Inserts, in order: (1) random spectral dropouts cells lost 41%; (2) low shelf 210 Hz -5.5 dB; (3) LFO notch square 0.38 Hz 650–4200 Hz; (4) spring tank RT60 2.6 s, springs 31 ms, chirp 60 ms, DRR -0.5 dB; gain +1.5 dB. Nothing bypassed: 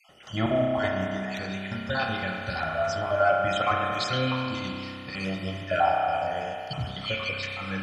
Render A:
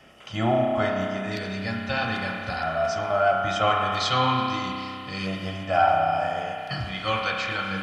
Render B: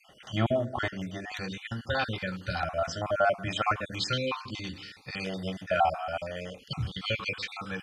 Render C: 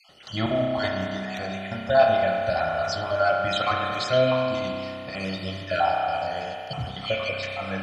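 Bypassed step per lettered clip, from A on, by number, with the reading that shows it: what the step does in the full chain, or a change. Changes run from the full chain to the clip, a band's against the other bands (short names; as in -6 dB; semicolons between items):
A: 1, 1 kHz band +2.0 dB; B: 4, momentary loudness spread change +1 LU; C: 3, 500 Hz band +4.0 dB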